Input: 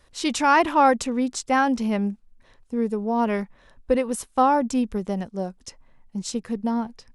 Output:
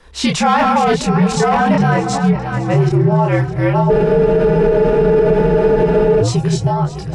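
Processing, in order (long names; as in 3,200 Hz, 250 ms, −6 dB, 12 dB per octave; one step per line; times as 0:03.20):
delay that plays each chunk backwards 583 ms, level −1.5 dB
on a send: echo with a time of its own for lows and highs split 590 Hz, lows 426 ms, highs 617 ms, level −16 dB
on the sum: gain into a clipping stage and back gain 12 dB
high-shelf EQ 5,600 Hz −10.5 dB
in parallel at +0.5 dB: downward compressor, threshold −29 dBFS, peak gain reduction 13.5 dB
on the sum: multi-voice chorus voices 2, 0.43 Hz, delay 26 ms, depth 3.5 ms
frequency shifter −73 Hz
frozen spectrum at 0:03.92, 2.29 s
boost into a limiter +15 dB
level −4 dB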